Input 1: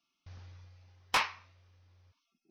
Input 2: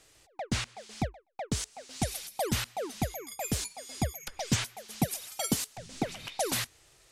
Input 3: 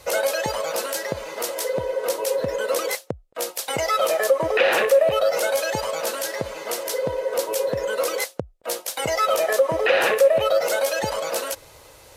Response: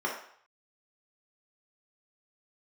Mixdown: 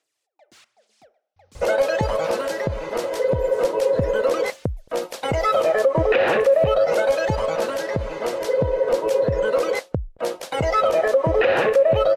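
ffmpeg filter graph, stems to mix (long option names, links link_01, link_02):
-filter_complex "[0:a]adelay=1100,volume=-14dB[link_01];[1:a]highpass=350,aphaser=in_gain=1:out_gain=1:delay=3.4:decay=0.53:speed=1.2:type=sinusoidal,asoftclip=type=hard:threshold=-29dB,volume=-17.5dB,asplit=2[link_02][link_03];[link_03]volume=-21.5dB[link_04];[2:a]aemphasis=mode=reproduction:type=riaa,adelay=1550,volume=2.5dB[link_05];[3:a]atrim=start_sample=2205[link_06];[link_04][link_06]afir=irnorm=-1:irlink=0[link_07];[link_01][link_02][link_05][link_07]amix=inputs=4:normalize=0,alimiter=limit=-9.5dB:level=0:latency=1:release=134"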